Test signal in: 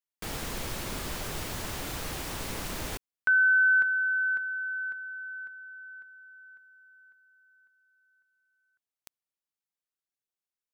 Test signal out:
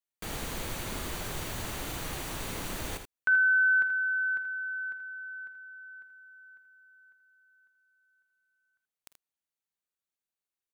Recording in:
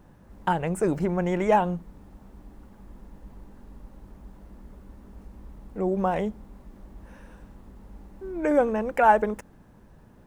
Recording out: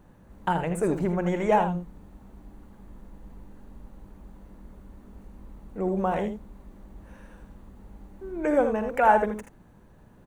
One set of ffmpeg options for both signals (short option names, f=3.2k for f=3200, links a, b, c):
-filter_complex "[0:a]bandreject=f=5.2k:w=9.2,asplit=2[a][b];[b]aecho=0:1:46|52|80:0.112|0.15|0.376[c];[a][c]amix=inputs=2:normalize=0,volume=-1.5dB"